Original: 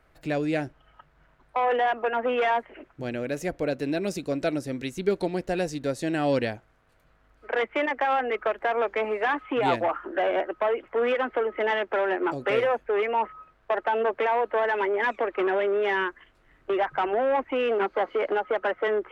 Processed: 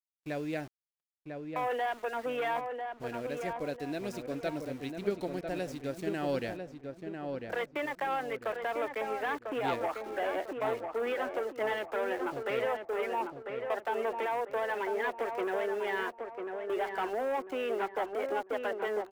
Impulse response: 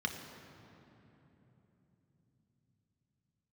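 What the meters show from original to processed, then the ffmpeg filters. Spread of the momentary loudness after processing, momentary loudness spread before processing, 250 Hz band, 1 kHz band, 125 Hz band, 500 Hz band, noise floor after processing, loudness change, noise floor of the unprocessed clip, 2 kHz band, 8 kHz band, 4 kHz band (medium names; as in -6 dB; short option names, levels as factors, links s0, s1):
6 LU, 6 LU, -7.5 dB, -7.5 dB, -8.0 dB, -7.5 dB, -58 dBFS, -8.0 dB, -62 dBFS, -8.0 dB, no reading, -7.5 dB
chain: -filter_complex "[0:a]aeval=exprs='val(0)*gte(abs(val(0)),0.0126)':c=same,aeval=exprs='0.266*(cos(1*acos(clip(val(0)/0.266,-1,1)))-cos(1*PI/2))+0.0188*(cos(3*acos(clip(val(0)/0.266,-1,1)))-cos(3*PI/2))+0.00188*(cos(7*acos(clip(val(0)/0.266,-1,1)))-cos(7*PI/2))':c=same,agate=range=0.0224:threshold=0.0112:ratio=3:detection=peak,asplit=2[s0][s1];[s1]adelay=997,lowpass=f=1800:p=1,volume=0.562,asplit=2[s2][s3];[s3]adelay=997,lowpass=f=1800:p=1,volume=0.39,asplit=2[s4][s5];[s5]adelay=997,lowpass=f=1800:p=1,volume=0.39,asplit=2[s6][s7];[s7]adelay=997,lowpass=f=1800:p=1,volume=0.39,asplit=2[s8][s9];[s9]adelay=997,lowpass=f=1800:p=1,volume=0.39[s10];[s2][s4][s6][s8][s10]amix=inputs=5:normalize=0[s11];[s0][s11]amix=inputs=2:normalize=0,volume=0.447"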